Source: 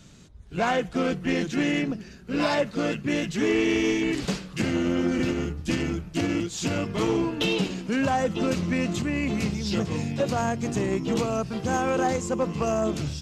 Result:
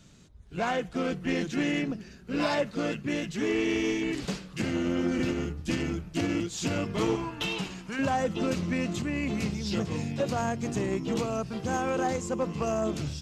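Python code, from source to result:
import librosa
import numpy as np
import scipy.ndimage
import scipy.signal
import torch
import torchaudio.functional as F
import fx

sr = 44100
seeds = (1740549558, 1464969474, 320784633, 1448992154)

y = fx.graphic_eq(x, sr, hz=(250, 500, 1000, 4000), db=(-8, -8, 4, -3), at=(7.15, 7.99))
y = fx.rider(y, sr, range_db=10, speed_s=2.0)
y = F.gain(torch.from_numpy(y), -4.0).numpy()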